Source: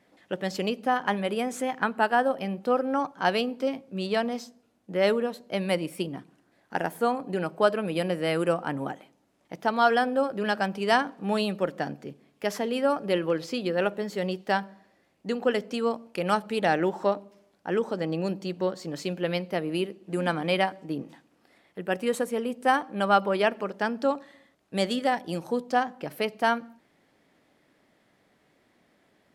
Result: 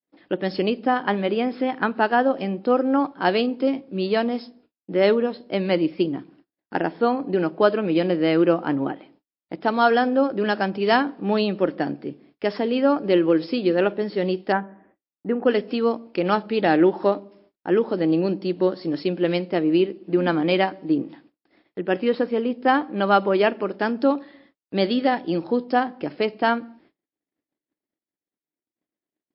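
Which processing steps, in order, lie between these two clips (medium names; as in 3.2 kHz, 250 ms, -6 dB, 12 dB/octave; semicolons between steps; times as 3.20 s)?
14.52–15.46 s: low-pass 2 kHz 24 dB/octave; gate -60 dBFS, range -45 dB; peaking EQ 320 Hz +10 dB 0.68 oct; trim +3 dB; MP3 32 kbps 12 kHz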